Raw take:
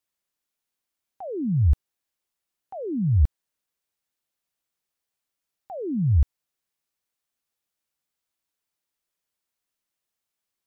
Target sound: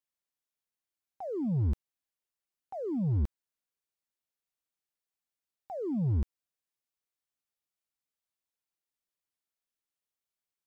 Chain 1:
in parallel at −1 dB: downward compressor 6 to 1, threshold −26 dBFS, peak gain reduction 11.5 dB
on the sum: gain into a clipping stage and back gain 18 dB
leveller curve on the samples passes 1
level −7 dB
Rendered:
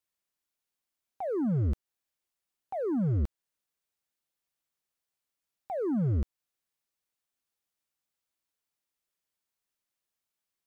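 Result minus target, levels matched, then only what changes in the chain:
downward compressor: peak gain reduction +11.5 dB
remove: downward compressor 6 to 1, threshold −26 dBFS, peak gain reduction 11.5 dB

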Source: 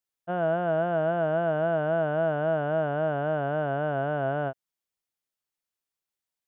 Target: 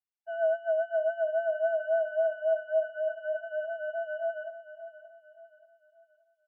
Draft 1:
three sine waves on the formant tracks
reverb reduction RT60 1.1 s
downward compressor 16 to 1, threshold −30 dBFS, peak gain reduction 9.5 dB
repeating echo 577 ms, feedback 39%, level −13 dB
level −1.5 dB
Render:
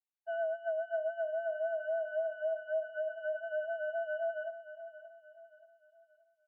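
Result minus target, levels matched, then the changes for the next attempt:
downward compressor: peak gain reduction +9.5 dB
remove: downward compressor 16 to 1, threshold −30 dBFS, peak gain reduction 9.5 dB

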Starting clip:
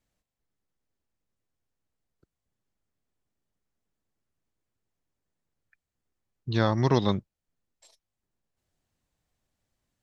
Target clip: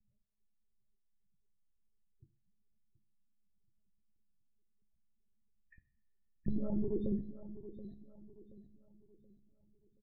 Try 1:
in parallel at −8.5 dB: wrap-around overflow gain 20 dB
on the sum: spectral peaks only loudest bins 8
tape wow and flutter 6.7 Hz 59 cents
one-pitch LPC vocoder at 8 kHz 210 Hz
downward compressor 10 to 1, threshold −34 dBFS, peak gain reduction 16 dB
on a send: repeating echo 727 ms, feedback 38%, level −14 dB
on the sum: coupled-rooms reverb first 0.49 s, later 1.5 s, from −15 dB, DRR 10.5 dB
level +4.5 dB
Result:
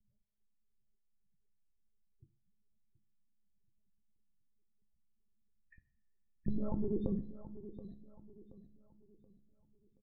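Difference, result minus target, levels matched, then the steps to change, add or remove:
wrap-around overflow: distortion +5 dB
change: wrap-around overflow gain 12 dB

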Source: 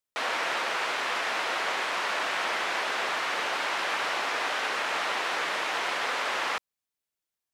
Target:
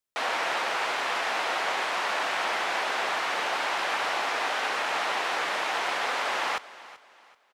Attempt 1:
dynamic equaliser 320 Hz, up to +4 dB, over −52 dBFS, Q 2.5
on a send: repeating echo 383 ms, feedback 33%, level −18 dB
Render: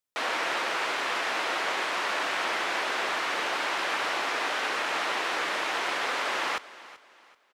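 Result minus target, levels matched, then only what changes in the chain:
250 Hz band +3.5 dB
change: dynamic equaliser 780 Hz, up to +4 dB, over −52 dBFS, Q 2.5

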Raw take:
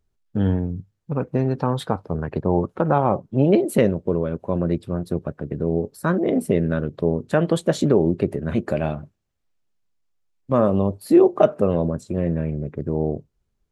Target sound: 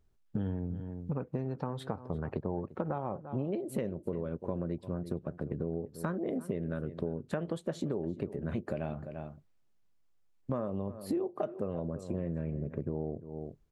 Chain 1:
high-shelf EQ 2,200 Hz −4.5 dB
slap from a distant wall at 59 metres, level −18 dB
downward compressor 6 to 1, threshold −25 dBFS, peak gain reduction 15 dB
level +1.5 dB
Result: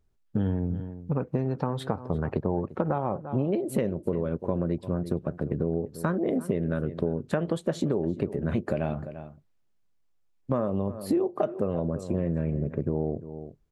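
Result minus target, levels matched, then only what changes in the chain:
downward compressor: peak gain reduction −7.5 dB
change: downward compressor 6 to 1, threshold −34 dBFS, peak gain reduction 22.5 dB

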